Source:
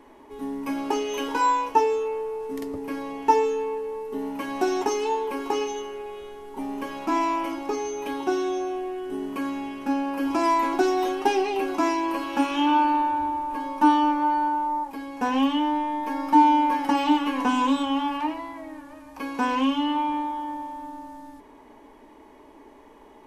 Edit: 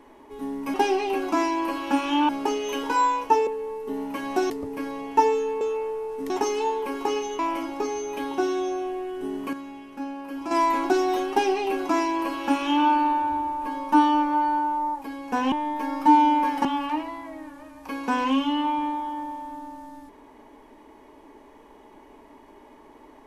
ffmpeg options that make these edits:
-filter_complex "[0:a]asplit=12[s0][s1][s2][s3][s4][s5][s6][s7][s8][s9][s10][s11];[s0]atrim=end=0.742[s12];[s1]atrim=start=11.198:end=12.752[s13];[s2]atrim=start=0.738:end=1.922[s14];[s3]atrim=start=3.718:end=4.752[s15];[s4]atrim=start=2.608:end=3.722[s16];[s5]atrim=start=1.918:end=2.612[s17];[s6]atrim=start=4.748:end=5.842[s18];[s7]atrim=start=7.278:end=9.422[s19];[s8]atrim=start=9.418:end=10.402,asetpts=PTS-STARTPTS,volume=0.398[s20];[s9]atrim=start=10.398:end=15.412[s21];[s10]atrim=start=15.788:end=16.922[s22];[s11]atrim=start=17.958[s23];[s12][s13]acrossfade=d=0.004:c1=hsin:c2=hsin[s24];[s24][s14]acrossfade=d=0.004:c1=hsin:c2=hsin[s25];[s25][s15]acrossfade=d=0.004:c1=hsin:c2=hsin[s26];[s26][s16]acrossfade=d=0.004:c1=hsin:c2=hsin[s27];[s27][s17]acrossfade=d=0.004:c1=hsin:c2=hsin[s28];[s28][s18]acrossfade=d=0.004:c1=hsin:c2=hsin[s29];[s29][s19]acrossfade=d=0.004:c1=hsin:c2=hsin[s30];[s30][s20]acrossfade=d=0.004:c1=hsin:c2=hsin[s31];[s31][s21]acrossfade=d=0.004:c1=hsin:c2=hsin[s32];[s32][s22]acrossfade=d=0.004:c1=hsin:c2=hsin[s33];[s33][s23]acrossfade=d=0.004:c1=hsin:c2=hsin"

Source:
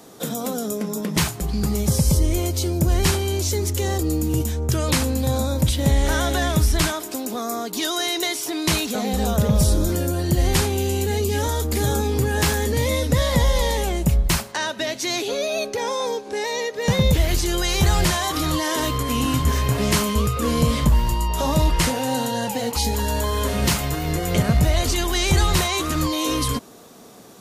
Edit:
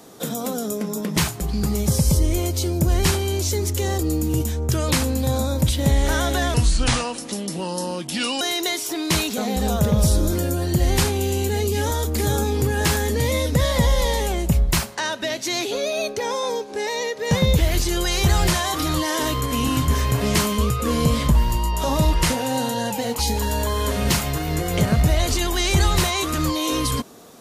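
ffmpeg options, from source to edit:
-filter_complex "[0:a]asplit=3[s0][s1][s2];[s0]atrim=end=6.544[s3];[s1]atrim=start=6.54:end=7.98,asetpts=PTS-STARTPTS,asetrate=33957,aresample=44100[s4];[s2]atrim=start=7.976[s5];[s3][s4]acrossfade=d=0.004:c1=hsin:c2=hsin[s6];[s6][s5]acrossfade=d=0.004:c1=hsin:c2=hsin"

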